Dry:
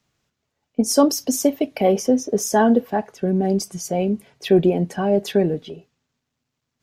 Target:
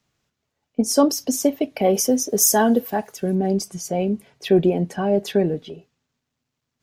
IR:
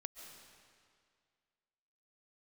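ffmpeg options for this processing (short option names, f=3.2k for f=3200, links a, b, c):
-filter_complex "[0:a]asplit=3[a][b][c];[a]afade=t=out:st=1.93:d=0.02[d];[b]aemphasis=mode=production:type=75fm,afade=t=in:st=1.93:d=0.02,afade=t=out:st=3.34:d=0.02[e];[c]afade=t=in:st=3.34:d=0.02[f];[d][e][f]amix=inputs=3:normalize=0,volume=-1dB"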